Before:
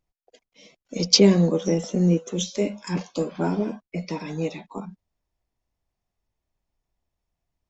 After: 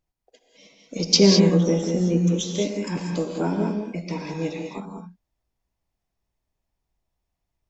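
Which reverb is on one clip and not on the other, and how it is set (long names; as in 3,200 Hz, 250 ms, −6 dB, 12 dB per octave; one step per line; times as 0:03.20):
reverb whose tail is shaped and stops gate 230 ms rising, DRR 2.5 dB
level −1 dB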